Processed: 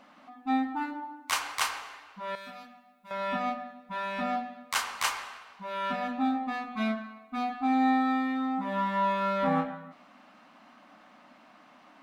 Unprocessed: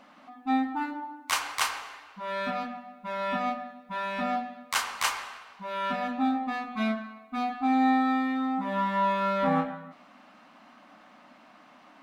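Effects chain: 2.35–3.11 s: pre-emphasis filter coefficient 0.8; trim -1.5 dB

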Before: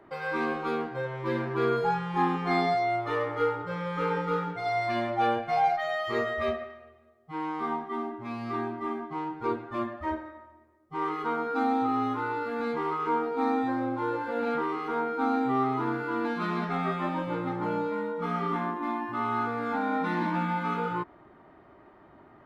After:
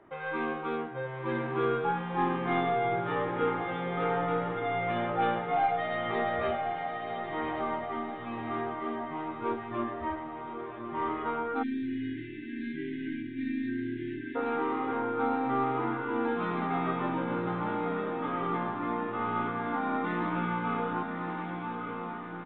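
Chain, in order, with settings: tracing distortion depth 0.038 ms; resampled via 8 kHz; echo that smears into a reverb 1147 ms, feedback 51%, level -5 dB; spectral selection erased 11.63–14.36 s, 390–1500 Hz; trim -3 dB

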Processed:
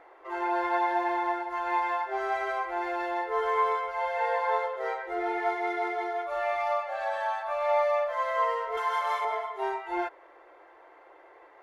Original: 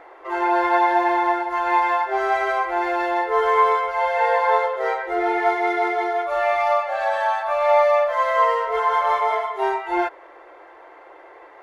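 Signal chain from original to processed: 8.77–9.25 s: tilt EQ +3 dB/octave; trim -9 dB

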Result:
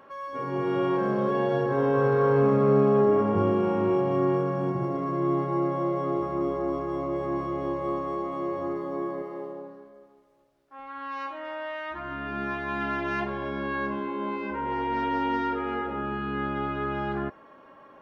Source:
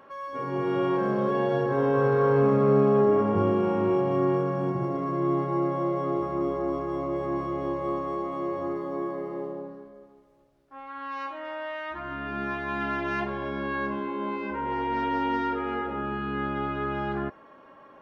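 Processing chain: 9.22–10.79 s: bass shelf 270 Hz -9 dB

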